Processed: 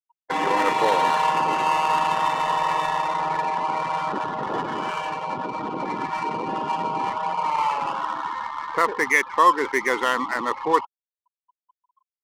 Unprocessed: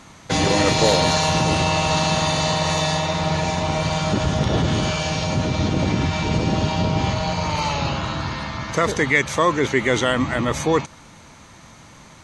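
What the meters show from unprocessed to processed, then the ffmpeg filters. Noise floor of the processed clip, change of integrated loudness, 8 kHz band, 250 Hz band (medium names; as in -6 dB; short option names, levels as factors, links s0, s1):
under -85 dBFS, -3.0 dB, -12.5 dB, -10.5 dB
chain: -af "highpass=440,equalizer=f=620:t=q:w=4:g=-8,equalizer=f=990:t=q:w=4:g=8,equalizer=f=2500:t=q:w=4:g=-3,lowpass=f=3100:w=0.5412,lowpass=f=3100:w=1.3066,afftfilt=real='re*gte(hypot(re,im),0.0501)':imag='im*gte(hypot(re,im),0.0501)':win_size=1024:overlap=0.75,adynamicsmooth=sensitivity=3.5:basefreq=1000"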